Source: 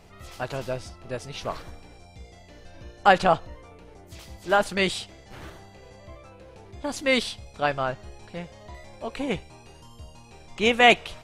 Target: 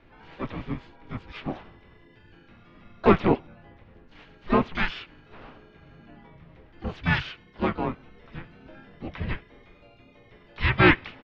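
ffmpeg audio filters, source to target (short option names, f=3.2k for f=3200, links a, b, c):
-filter_complex "[0:a]highpass=f=250:t=q:w=0.5412,highpass=f=250:t=q:w=1.307,lowpass=f=3.6k:t=q:w=0.5176,lowpass=f=3.6k:t=q:w=0.7071,lowpass=f=3.6k:t=q:w=1.932,afreqshift=-360,asplit=4[a][b][c][d];[b]asetrate=22050,aresample=44100,atempo=2,volume=-6dB[e];[c]asetrate=37084,aresample=44100,atempo=1.18921,volume=-4dB[f];[d]asetrate=66075,aresample=44100,atempo=0.66742,volume=-11dB[g];[a][e][f][g]amix=inputs=4:normalize=0,volume=-3dB"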